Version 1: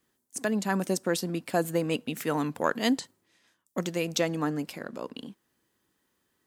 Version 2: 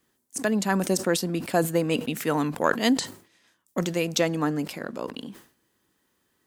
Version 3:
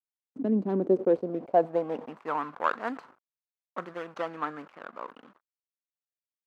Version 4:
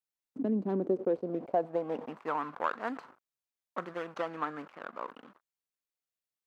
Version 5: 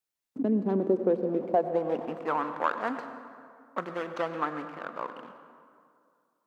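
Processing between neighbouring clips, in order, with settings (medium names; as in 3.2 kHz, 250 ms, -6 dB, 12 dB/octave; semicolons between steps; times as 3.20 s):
decay stretcher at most 130 dB/s; trim +3.5 dB
median filter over 25 samples; crossover distortion -49.5 dBFS; band-pass sweep 230 Hz -> 1.3 kHz, 0.21–2.50 s; trim +5.5 dB
compression 2:1, threshold -30 dBFS, peak gain reduction 8 dB
reverberation RT60 2.3 s, pre-delay 88 ms, DRR 9.5 dB; trim +4 dB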